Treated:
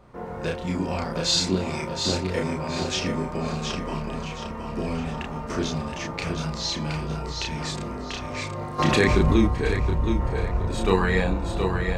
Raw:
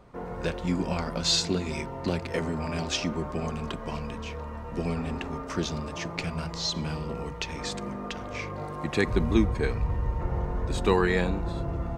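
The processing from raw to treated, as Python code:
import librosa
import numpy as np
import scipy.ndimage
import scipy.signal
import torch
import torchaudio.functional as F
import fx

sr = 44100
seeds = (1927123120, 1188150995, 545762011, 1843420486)

y = fx.doubler(x, sr, ms=32.0, db=-2)
y = fx.echo_feedback(y, sr, ms=720, feedback_pct=33, wet_db=-5.5)
y = fx.env_flatten(y, sr, amount_pct=70, at=(8.78, 9.46), fade=0.02)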